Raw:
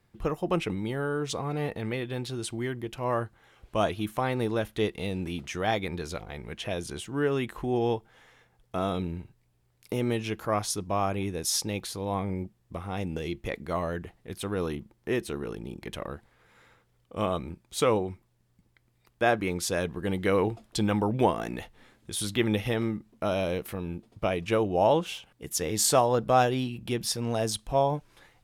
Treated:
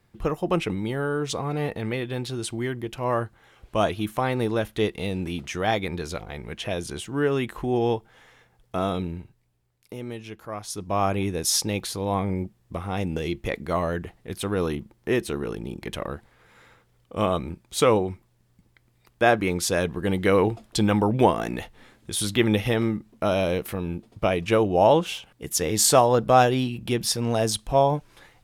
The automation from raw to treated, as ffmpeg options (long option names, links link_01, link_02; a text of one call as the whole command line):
ffmpeg -i in.wav -af "volume=15.5dB,afade=type=out:start_time=8.83:duration=1.11:silence=0.298538,afade=type=in:start_time=10.63:duration=0.43:silence=0.251189" out.wav